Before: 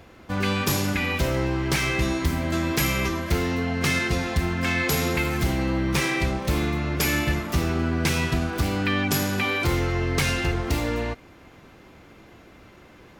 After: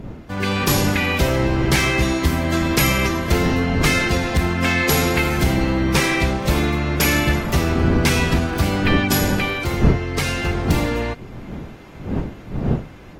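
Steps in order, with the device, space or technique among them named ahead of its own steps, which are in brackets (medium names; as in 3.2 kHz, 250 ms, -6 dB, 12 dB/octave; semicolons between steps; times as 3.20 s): smartphone video outdoors (wind noise; level rider gain up to 7 dB; trim -1.5 dB; AAC 48 kbps 48 kHz)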